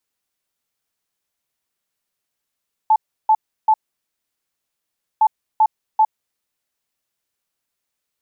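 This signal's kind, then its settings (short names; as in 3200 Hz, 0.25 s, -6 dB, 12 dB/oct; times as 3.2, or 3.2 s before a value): beep pattern sine 871 Hz, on 0.06 s, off 0.33 s, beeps 3, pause 1.47 s, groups 2, -9.5 dBFS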